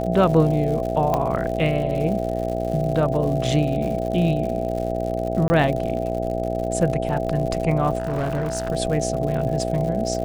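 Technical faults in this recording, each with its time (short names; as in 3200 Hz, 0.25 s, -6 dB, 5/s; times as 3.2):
buzz 60 Hz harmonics 13 -27 dBFS
crackle 120/s -29 dBFS
tone 660 Hz -28 dBFS
1.14 pop -9 dBFS
5.48–5.5 gap 20 ms
7.98–8.7 clipped -20 dBFS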